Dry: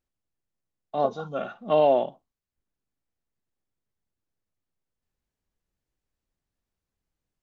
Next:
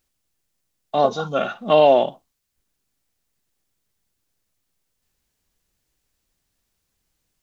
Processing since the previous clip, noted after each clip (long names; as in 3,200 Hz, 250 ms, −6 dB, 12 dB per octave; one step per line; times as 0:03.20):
in parallel at −3 dB: brickwall limiter −19 dBFS, peak gain reduction 8.5 dB
on the sum: high-shelf EQ 2,200 Hz +10 dB
level +3 dB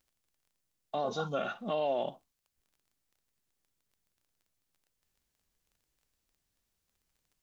brickwall limiter −16 dBFS, peak gain reduction 11.5 dB
surface crackle 15 per second −49 dBFS
level −7.5 dB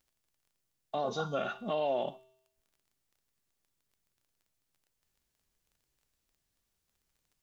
tuned comb filter 130 Hz, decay 0.79 s, harmonics odd, mix 60%
level +7.5 dB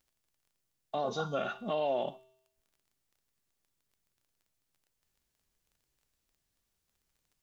no processing that can be heard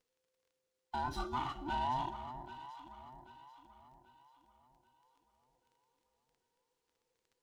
frequency inversion band by band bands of 500 Hz
delay that swaps between a low-pass and a high-pass 393 ms, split 890 Hz, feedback 64%, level −8.5 dB
windowed peak hold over 3 samples
level −4 dB